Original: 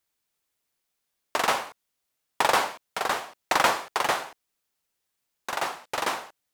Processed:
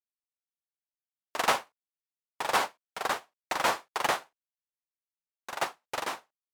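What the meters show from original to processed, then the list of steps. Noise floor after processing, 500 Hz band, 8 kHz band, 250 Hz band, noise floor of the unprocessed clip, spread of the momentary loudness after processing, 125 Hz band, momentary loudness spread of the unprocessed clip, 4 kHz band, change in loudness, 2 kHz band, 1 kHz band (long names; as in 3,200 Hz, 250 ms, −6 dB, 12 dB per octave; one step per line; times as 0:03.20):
below −85 dBFS, −4.5 dB, −4.5 dB, −4.5 dB, −80 dBFS, 10 LU, −4.5 dB, 11 LU, −4.5 dB, −4.5 dB, −4.5 dB, −4.5 dB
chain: brickwall limiter −15 dBFS, peak gain reduction 8.5 dB
expander for the loud parts 2.5 to 1, over −48 dBFS
level +3.5 dB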